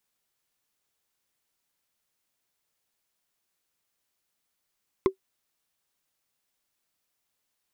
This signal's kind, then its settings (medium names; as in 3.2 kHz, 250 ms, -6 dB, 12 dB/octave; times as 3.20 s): wood hit, lowest mode 382 Hz, decay 0.10 s, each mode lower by 6.5 dB, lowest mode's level -12.5 dB